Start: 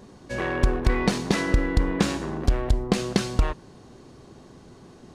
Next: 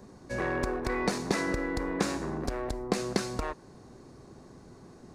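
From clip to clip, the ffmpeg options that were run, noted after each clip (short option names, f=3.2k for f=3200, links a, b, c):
-filter_complex "[0:a]equalizer=f=3.1k:t=o:w=0.52:g=-9.5,acrossover=split=260|1700[a][b][c];[a]acompressor=threshold=-31dB:ratio=6[d];[d][b][c]amix=inputs=3:normalize=0,volume=-3dB"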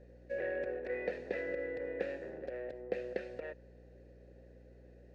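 -filter_complex "[0:a]acrossover=split=3600[a][b];[b]acompressor=threshold=-53dB:ratio=4:attack=1:release=60[c];[a][c]amix=inputs=2:normalize=0,asplit=3[d][e][f];[d]bandpass=f=530:t=q:w=8,volume=0dB[g];[e]bandpass=f=1.84k:t=q:w=8,volume=-6dB[h];[f]bandpass=f=2.48k:t=q:w=8,volume=-9dB[i];[g][h][i]amix=inputs=3:normalize=0,aeval=exprs='val(0)+0.001*(sin(2*PI*60*n/s)+sin(2*PI*2*60*n/s)/2+sin(2*PI*3*60*n/s)/3+sin(2*PI*4*60*n/s)/4+sin(2*PI*5*60*n/s)/5)':c=same,volume=3dB"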